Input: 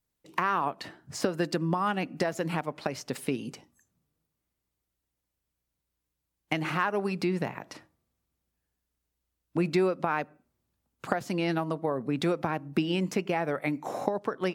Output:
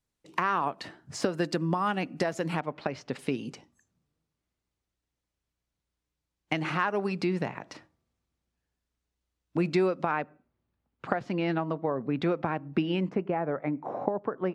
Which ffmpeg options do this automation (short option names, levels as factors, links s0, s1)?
-af "asetnsamples=n=441:p=0,asendcmd='2.6 lowpass f 3600;3.19 lowpass f 6900;10.11 lowpass f 2900;13.09 lowpass f 1300',lowpass=9300"